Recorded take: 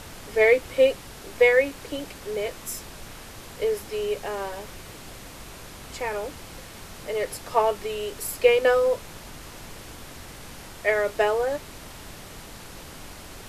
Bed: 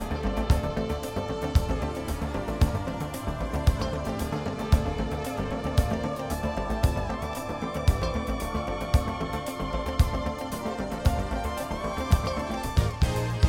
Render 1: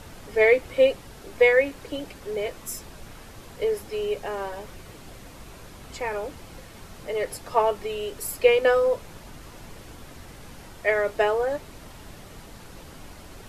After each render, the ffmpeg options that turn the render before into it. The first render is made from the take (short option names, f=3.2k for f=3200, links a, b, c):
-af "afftdn=nr=6:nf=-43"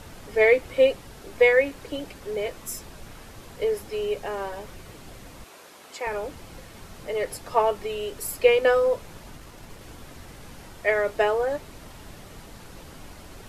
-filter_complex "[0:a]asettb=1/sr,asplit=3[a][b][c];[a]atrim=end=5.444[d];[b]atrim=start=5.44:end=6.07,asetpts=PTS-STARTPTS,afade=t=in:d=0.004:c=qsin,afade=t=out:st=0.626:d=0.004:c=qsin,highpass=390[e];[c]atrim=start=6.066[f];[d][e]acrossfade=d=0.004:c1=hsin:c2=qsin[g];[g][f]acrossfade=d=0.004:c1=qsin:c2=hsin,asettb=1/sr,asplit=3[h][i][j];[h]atrim=end=9.374[k];[i]atrim=start=9.37:end=9.81,asetpts=PTS-STARTPTS,afade=t=in:d=0.004:c=qsin,afade=t=out:st=0.436:d=0.004:c=qsin,aeval=exprs='if(lt(val(0),0),0.708*val(0),val(0))':c=same[l];[j]atrim=start=9.806[m];[k][l]acrossfade=d=0.004:c1=hsin:c2=qsin[n];[n][m]acrossfade=d=0.004:c1=qsin:c2=hsin"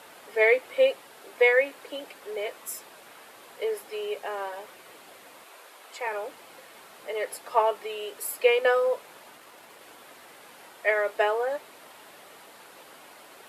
-af "highpass=510,equalizer=f=5.9k:w=1.6:g=-6.5"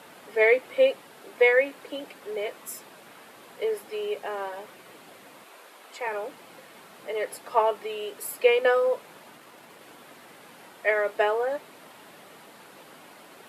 -af "highpass=170,bass=f=250:g=14,treble=f=4k:g=-2"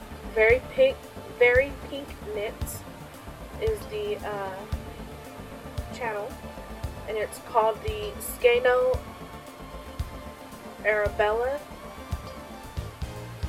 -filter_complex "[1:a]volume=-11dB[a];[0:a][a]amix=inputs=2:normalize=0"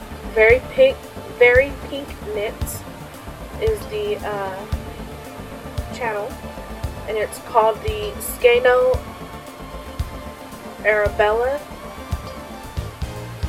-af "volume=7dB,alimiter=limit=-2dB:level=0:latency=1"